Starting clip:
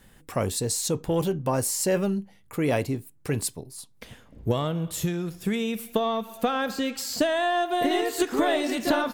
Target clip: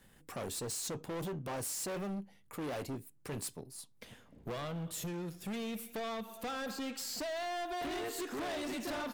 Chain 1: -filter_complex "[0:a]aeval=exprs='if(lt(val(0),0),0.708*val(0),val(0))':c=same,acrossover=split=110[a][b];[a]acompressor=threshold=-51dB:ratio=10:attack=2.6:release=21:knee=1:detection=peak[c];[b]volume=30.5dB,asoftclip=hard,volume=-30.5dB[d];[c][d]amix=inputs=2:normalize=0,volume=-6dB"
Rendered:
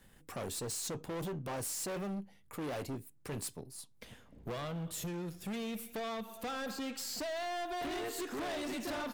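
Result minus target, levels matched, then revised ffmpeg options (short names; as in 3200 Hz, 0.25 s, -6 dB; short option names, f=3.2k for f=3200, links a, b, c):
compressor: peak gain reduction -6.5 dB
-filter_complex "[0:a]aeval=exprs='if(lt(val(0),0),0.708*val(0),val(0))':c=same,acrossover=split=110[a][b];[a]acompressor=threshold=-58dB:ratio=10:attack=2.6:release=21:knee=1:detection=peak[c];[b]volume=30.5dB,asoftclip=hard,volume=-30.5dB[d];[c][d]amix=inputs=2:normalize=0,volume=-6dB"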